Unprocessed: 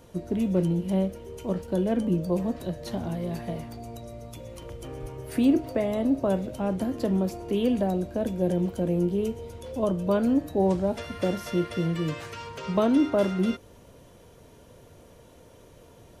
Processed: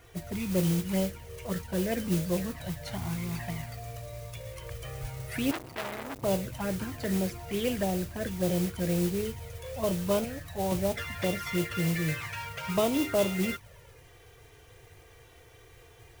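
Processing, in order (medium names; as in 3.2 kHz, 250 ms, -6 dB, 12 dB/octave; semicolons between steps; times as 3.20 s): graphic EQ 125/250/2000 Hz +6/-10/+11 dB; touch-sensitive flanger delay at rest 2.9 ms, full sweep at -22.5 dBFS; 10.24–10.72 s: peaking EQ 300 Hz -12.5 dB 1.1 oct; modulation noise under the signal 13 dB; 5.51–6.23 s: transformer saturation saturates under 2.8 kHz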